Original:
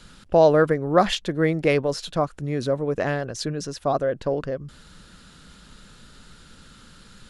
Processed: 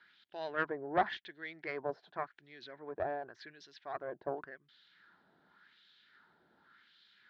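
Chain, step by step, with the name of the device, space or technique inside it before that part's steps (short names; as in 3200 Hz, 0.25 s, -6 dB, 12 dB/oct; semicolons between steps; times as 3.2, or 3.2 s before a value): wah-wah guitar rig (wah 0.89 Hz 660–3400 Hz, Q 2.3; tube stage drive 16 dB, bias 0.75; speaker cabinet 84–4300 Hz, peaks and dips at 360 Hz +6 dB, 520 Hz -9 dB, 1200 Hz -8 dB, 1700 Hz +4 dB, 2700 Hz -9 dB)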